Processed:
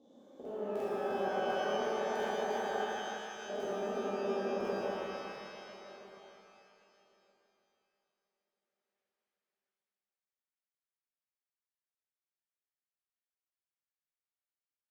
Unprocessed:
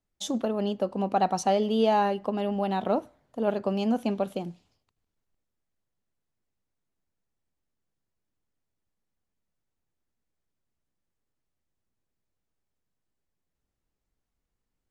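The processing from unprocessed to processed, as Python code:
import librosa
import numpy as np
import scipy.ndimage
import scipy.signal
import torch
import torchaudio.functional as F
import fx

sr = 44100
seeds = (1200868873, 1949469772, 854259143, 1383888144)

y = fx.spec_steps(x, sr, hold_ms=400)
y = fx.formant_cascade(y, sr, vowel='a', at=(1.8, 3.46))
y = fx.echo_filtered(y, sr, ms=160, feedback_pct=83, hz=2600.0, wet_db=-4)
y = fx.filter_sweep_bandpass(y, sr, from_hz=370.0, to_hz=2000.0, start_s=4.29, end_s=7.03, q=0.85)
y = fx.level_steps(y, sr, step_db=19)
y = fx.peak_eq(y, sr, hz=190.0, db=-12.5, octaves=1.2)
y = fx.buffer_crackle(y, sr, first_s=0.36, period_s=0.35, block=2048, kind='repeat')
y = fx.rev_shimmer(y, sr, seeds[0], rt60_s=2.5, semitones=12, shimmer_db=-8, drr_db=-10.0)
y = y * librosa.db_to_amplitude(-3.5)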